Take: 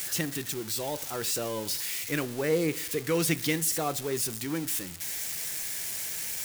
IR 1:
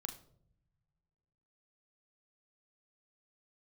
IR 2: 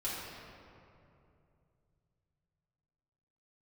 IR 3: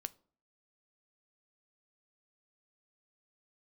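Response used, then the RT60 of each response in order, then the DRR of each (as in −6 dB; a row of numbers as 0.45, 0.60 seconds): 3; non-exponential decay, 2.7 s, 0.50 s; 5.0, −9.0, 13.5 decibels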